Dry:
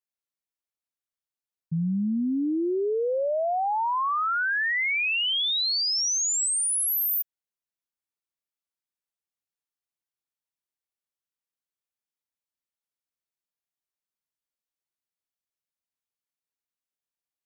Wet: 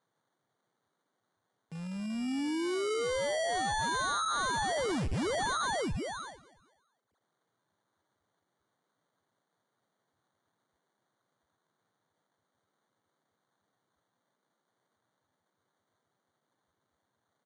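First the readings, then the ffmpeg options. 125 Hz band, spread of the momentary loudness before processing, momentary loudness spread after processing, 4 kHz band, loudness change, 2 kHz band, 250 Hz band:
-4.5 dB, 4 LU, 9 LU, -12.5 dB, -8.0 dB, -9.0 dB, -6.5 dB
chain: -af "aeval=exprs='val(0)+0.5*0.00596*sgn(val(0))':c=same,lowpass=f=3600:w=0.5412,lowpass=f=3600:w=1.3066,agate=range=0.0562:threshold=0.00282:ratio=16:detection=peak,acontrast=44,highpass=550,asoftclip=type=hard:threshold=0.0282,aecho=1:1:217|434|651:0.0891|0.0383|0.0165,acrusher=samples=17:mix=1:aa=0.000001" -ar 22050 -c:a libvorbis -b:a 48k

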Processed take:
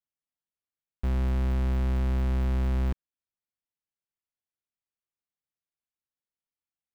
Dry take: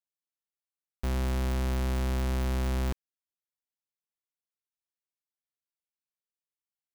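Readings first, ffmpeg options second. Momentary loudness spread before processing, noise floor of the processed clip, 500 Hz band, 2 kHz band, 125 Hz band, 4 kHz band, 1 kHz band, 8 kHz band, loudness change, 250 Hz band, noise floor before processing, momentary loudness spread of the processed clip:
5 LU, under -85 dBFS, -2.0 dB, -3.0 dB, +3.5 dB, -6.5 dB, -2.5 dB, -11.5 dB, +2.5 dB, +1.0 dB, under -85 dBFS, 5 LU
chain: -af "bass=f=250:g=6,treble=f=4000:g=-10,volume=0.75"

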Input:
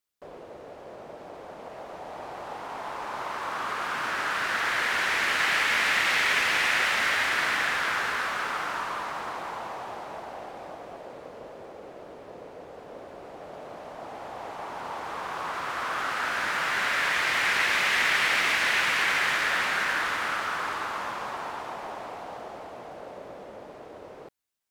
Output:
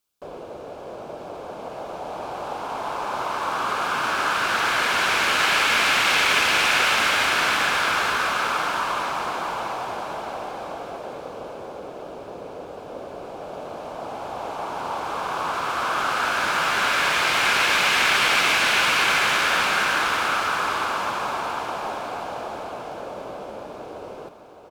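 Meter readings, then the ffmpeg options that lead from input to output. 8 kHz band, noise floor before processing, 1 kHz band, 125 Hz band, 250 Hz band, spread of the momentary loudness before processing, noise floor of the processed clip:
+7.5 dB, -45 dBFS, +7.0 dB, +7.5 dB, +7.5 dB, 22 LU, -38 dBFS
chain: -af "equalizer=f=1900:w=7.2:g=-14,aecho=1:1:613|1226|1839|2452|3065|3678:0.266|0.144|0.0776|0.0419|0.0226|0.0122,volume=2.24"

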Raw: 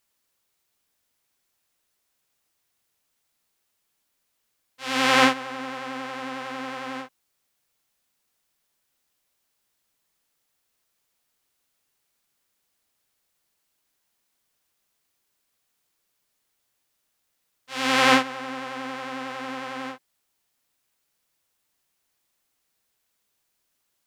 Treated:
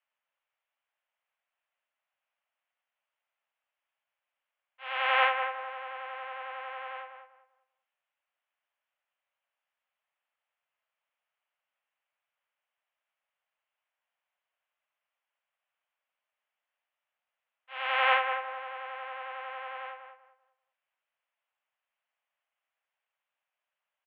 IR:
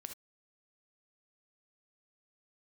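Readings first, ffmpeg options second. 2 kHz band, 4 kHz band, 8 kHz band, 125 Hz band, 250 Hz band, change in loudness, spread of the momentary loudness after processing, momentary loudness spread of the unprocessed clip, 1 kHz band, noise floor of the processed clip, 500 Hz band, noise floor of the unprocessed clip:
-5.0 dB, -10.5 dB, under -40 dB, under -40 dB, under -40 dB, -6.5 dB, 19 LU, 18 LU, -4.5 dB, under -85 dBFS, -8.5 dB, -75 dBFS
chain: -filter_complex "[0:a]asuperpass=centerf=1300:order=12:qfactor=0.51,asplit=2[s0][s1];[s1]adelay=195,lowpass=f=1900:p=1,volume=0.473,asplit=2[s2][s3];[s3]adelay=195,lowpass=f=1900:p=1,volume=0.28,asplit=2[s4][s5];[s5]adelay=195,lowpass=f=1900:p=1,volume=0.28,asplit=2[s6][s7];[s7]adelay=195,lowpass=f=1900:p=1,volume=0.28[s8];[s2][s4][s6][s8]amix=inputs=4:normalize=0[s9];[s0][s9]amix=inputs=2:normalize=0,volume=0.501"

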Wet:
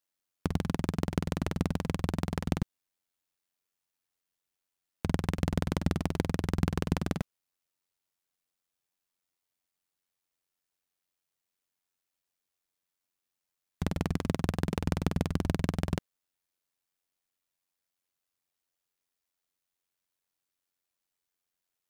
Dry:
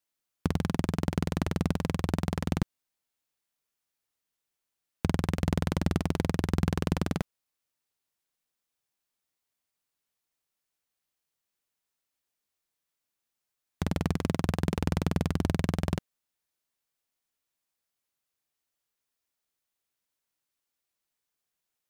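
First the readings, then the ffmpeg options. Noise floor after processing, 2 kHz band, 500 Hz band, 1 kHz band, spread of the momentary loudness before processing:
under -85 dBFS, -2.0 dB, -2.0 dB, -2.0 dB, 5 LU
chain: -af "tremolo=f=90:d=0.621,volume=1.12"

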